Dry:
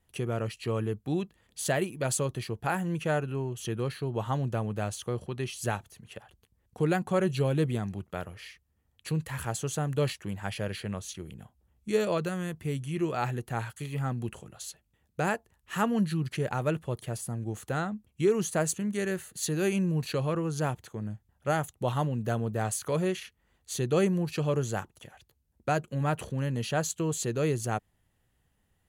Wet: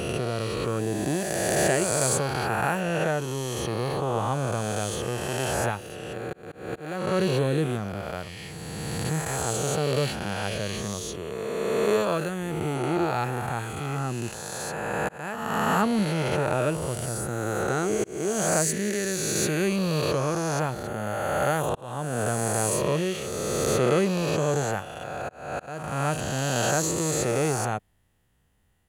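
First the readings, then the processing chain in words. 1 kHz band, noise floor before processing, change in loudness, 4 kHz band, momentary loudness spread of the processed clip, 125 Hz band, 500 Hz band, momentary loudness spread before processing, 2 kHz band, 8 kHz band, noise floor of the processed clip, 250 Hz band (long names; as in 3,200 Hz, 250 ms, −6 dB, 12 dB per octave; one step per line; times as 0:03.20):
+6.0 dB, −73 dBFS, +4.0 dB, +7.5 dB, 10 LU, +2.0 dB, +5.0 dB, 11 LU, +6.5 dB, +8.5 dB, −45 dBFS, +3.0 dB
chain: peak hold with a rise ahead of every peak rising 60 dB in 2.86 s
volume swells 474 ms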